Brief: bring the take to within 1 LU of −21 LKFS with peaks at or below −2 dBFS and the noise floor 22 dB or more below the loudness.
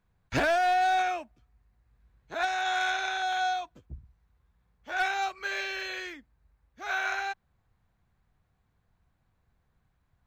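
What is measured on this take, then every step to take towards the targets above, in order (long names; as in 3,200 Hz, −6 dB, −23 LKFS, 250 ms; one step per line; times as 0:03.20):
share of clipped samples 0.4%; peaks flattened at −20.5 dBFS; integrated loudness −29.0 LKFS; sample peak −20.5 dBFS; target loudness −21.0 LKFS
→ clipped peaks rebuilt −20.5 dBFS
level +8 dB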